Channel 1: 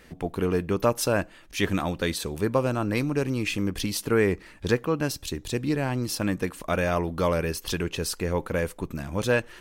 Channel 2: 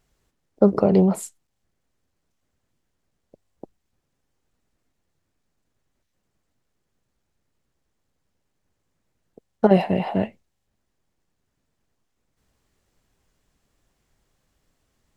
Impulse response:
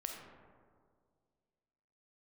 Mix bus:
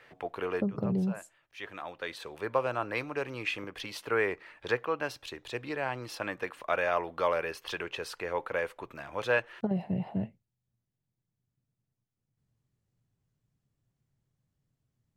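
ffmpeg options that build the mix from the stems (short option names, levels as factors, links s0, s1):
-filter_complex "[0:a]acrossover=split=460 3500:gain=0.0708 1 0.141[s0][s1][s2];[s0][s1][s2]amix=inputs=3:normalize=0,volume=0.944[s3];[1:a]equalizer=f=140:w=0.71:g=13,acompressor=threshold=0.355:ratio=6,volume=0.126,asplit=2[s4][s5];[s5]apad=whole_len=423733[s6];[s3][s6]sidechaincompress=threshold=0.00631:ratio=10:attack=9.3:release=1220[s7];[s7][s4]amix=inputs=2:normalize=0,equalizer=f=120:w=3.2:g=9.5"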